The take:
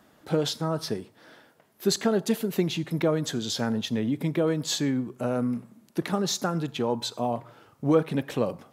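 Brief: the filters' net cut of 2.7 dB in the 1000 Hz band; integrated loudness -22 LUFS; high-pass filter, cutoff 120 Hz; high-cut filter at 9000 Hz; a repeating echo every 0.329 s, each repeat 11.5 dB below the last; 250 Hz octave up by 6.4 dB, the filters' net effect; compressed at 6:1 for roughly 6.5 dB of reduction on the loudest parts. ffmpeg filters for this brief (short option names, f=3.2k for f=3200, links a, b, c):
-af "highpass=120,lowpass=9k,equalizer=f=250:t=o:g=8.5,equalizer=f=1k:t=o:g=-4.5,acompressor=threshold=-20dB:ratio=6,aecho=1:1:329|658|987:0.266|0.0718|0.0194,volume=4.5dB"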